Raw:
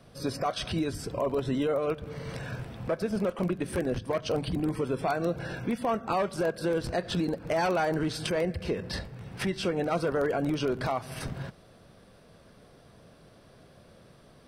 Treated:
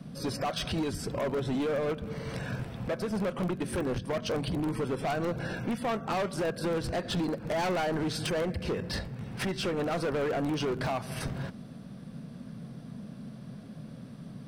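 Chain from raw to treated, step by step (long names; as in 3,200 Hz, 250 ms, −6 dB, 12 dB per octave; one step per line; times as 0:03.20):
hard clipping −28 dBFS, distortion −10 dB
noise in a band 120–250 Hz −45 dBFS
level +1 dB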